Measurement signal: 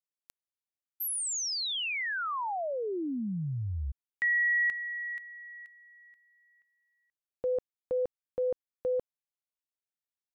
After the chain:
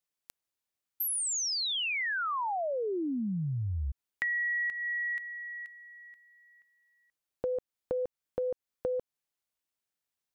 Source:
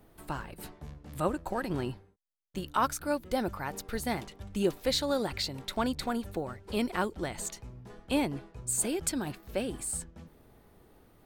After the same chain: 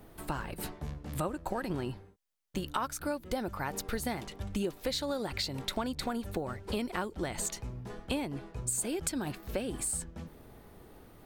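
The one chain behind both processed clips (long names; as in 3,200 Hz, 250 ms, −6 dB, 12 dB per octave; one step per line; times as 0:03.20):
downward compressor 6 to 1, threshold −36 dBFS
level +5.5 dB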